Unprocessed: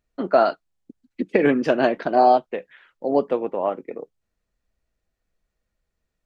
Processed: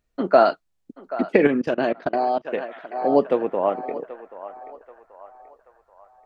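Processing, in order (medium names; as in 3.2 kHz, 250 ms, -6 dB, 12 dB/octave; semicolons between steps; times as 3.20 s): band-passed feedback delay 782 ms, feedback 50%, band-pass 1.1 kHz, level -13 dB; 1.47–2.45 s: level held to a coarse grid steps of 23 dB; trim +2 dB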